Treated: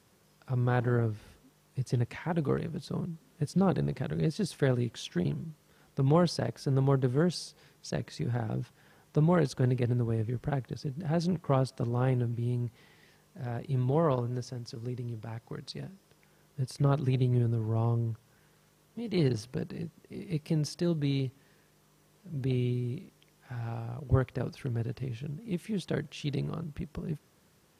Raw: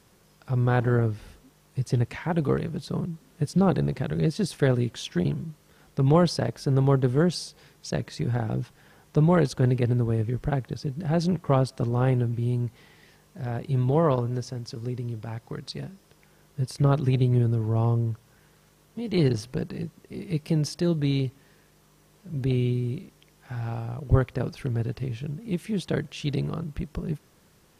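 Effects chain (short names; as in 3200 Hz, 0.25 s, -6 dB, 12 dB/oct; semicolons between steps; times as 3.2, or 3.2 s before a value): HPF 62 Hz; gain -5 dB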